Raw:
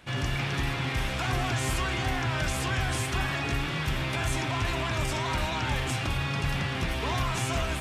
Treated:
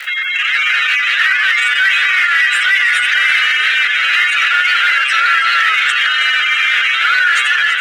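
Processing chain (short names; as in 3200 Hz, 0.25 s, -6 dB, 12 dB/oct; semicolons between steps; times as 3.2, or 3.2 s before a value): spectral gate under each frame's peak -20 dB strong; steep high-pass 860 Hz 72 dB/oct; bell 1400 Hz +13.5 dB 1.8 oct; AGC gain up to 11 dB; in parallel at -3 dB: soft clip -20 dBFS, distortion -7 dB; on the sum: crackle 170/s -38 dBFS; frequency shift +410 Hz; on a send: split-band echo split 2200 Hz, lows 0.616 s, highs 0.329 s, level -12 dB; on the sum: fast leveller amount 50%; gain -2 dB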